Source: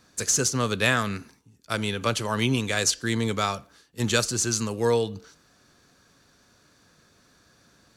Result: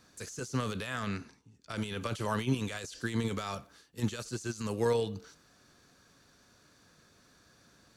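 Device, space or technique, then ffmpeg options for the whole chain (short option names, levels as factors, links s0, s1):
de-esser from a sidechain: -filter_complex "[0:a]asplit=2[s0][s1];[s1]highpass=4000,apad=whole_len=351156[s2];[s0][s2]sidechaincompress=threshold=0.00891:ratio=12:attack=1.4:release=21,asettb=1/sr,asplit=3[s3][s4][s5];[s3]atrim=end=0.994[s6];[s4]atrim=start=0.99:end=1.76,asetpts=PTS-STARTPTS,afade=t=in:d=0.004:c=qsin,afade=t=out:st=0.766:d=0.004:c=qsin,lowpass=7100[s7];[s5]atrim=start=1.756[s8];[s6][s7]acrossfade=d=0.004:c1=hsin:c2=qsin[s9];[s9][s8]acrossfade=d=0.004:c1=qsin:c2=hsin,volume=0.708"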